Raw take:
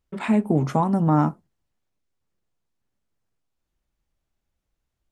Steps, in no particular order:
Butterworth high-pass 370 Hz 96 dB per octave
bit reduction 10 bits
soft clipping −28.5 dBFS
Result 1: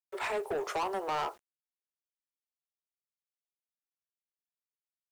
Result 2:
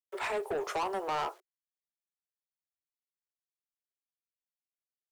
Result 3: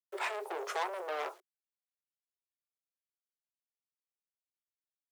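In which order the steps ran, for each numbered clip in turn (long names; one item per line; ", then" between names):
Butterworth high-pass, then soft clipping, then bit reduction
bit reduction, then Butterworth high-pass, then soft clipping
soft clipping, then bit reduction, then Butterworth high-pass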